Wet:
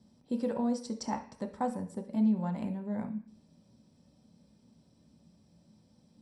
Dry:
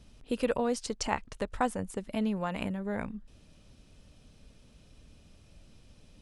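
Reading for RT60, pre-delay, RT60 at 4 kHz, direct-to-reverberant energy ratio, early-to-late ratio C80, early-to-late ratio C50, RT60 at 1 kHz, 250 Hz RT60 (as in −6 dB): 0.45 s, 3 ms, can't be measured, 2.5 dB, 16.0 dB, 11.0 dB, 0.45 s, 0.55 s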